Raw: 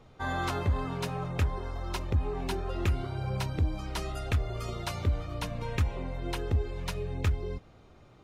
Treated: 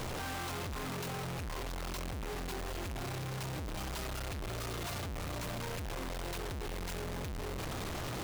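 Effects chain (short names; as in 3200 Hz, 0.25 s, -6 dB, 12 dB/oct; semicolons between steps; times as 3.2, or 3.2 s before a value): infinite clipping; gain -7.5 dB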